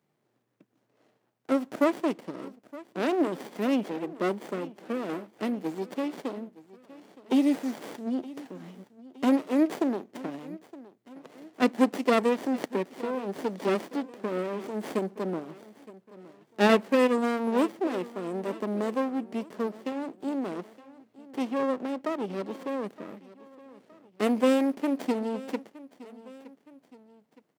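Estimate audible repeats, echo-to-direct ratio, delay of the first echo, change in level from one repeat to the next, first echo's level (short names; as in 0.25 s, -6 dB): 2, -18.0 dB, 0.917 s, -6.0 dB, -19.0 dB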